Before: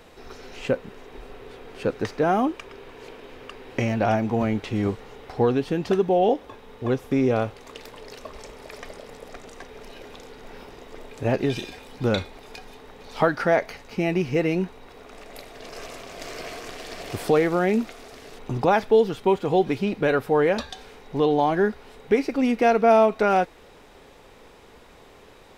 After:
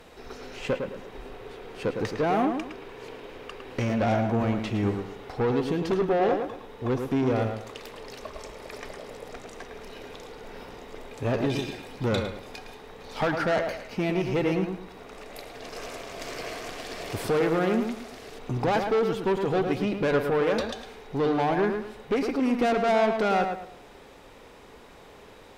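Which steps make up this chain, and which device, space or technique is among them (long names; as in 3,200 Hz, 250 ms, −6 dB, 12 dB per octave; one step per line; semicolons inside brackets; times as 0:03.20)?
rockabilly slapback (tube saturation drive 20 dB, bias 0.25; tape delay 109 ms, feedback 35%, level −4 dB, low-pass 2,300 Hz)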